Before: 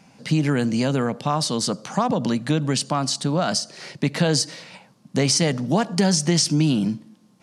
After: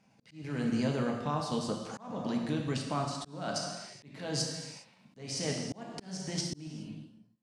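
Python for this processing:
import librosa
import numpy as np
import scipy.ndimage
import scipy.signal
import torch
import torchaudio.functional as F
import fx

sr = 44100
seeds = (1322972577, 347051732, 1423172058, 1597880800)

y = fx.fade_out_tail(x, sr, length_s=1.49)
y = fx.high_shelf(y, sr, hz=6400.0, db=-5.5)
y = fx.level_steps(y, sr, step_db=12)
y = fx.rev_gated(y, sr, seeds[0], gate_ms=440, shape='falling', drr_db=1.0)
y = fx.auto_swell(y, sr, attack_ms=390.0)
y = y * 10.0 ** (-8.5 / 20.0)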